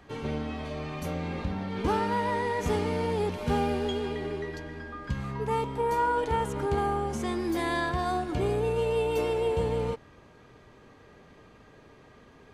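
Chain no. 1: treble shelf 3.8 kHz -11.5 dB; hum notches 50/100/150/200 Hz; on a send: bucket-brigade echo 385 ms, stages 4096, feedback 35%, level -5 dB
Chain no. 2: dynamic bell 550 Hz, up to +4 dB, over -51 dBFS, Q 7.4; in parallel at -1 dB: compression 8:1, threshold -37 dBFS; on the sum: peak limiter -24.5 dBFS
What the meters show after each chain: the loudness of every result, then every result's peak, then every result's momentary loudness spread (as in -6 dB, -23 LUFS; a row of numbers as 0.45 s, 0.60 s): -29.0 LUFS, -33.0 LUFS; -14.5 dBFS, -24.5 dBFS; 9 LU, 17 LU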